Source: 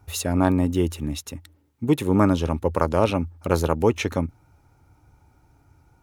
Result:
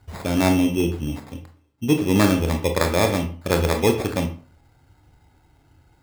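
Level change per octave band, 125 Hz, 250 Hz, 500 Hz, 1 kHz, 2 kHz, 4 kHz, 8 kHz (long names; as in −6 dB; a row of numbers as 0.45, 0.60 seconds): +1.0, +1.5, +1.0, 0.0, +6.0, +5.5, +3.0 decibels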